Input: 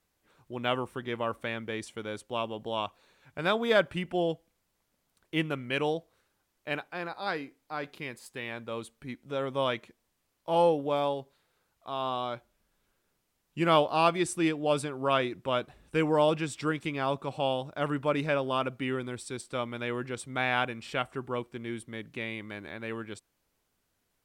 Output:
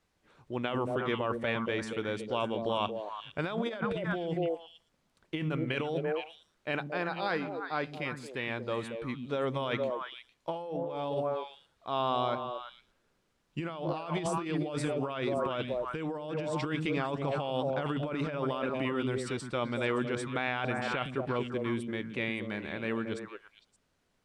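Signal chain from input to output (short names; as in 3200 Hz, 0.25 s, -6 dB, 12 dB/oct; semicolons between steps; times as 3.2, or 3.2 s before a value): air absorption 59 m; delay with a stepping band-pass 0.114 s, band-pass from 180 Hz, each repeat 1.4 oct, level -1.5 dB; negative-ratio compressor -32 dBFS, ratio -1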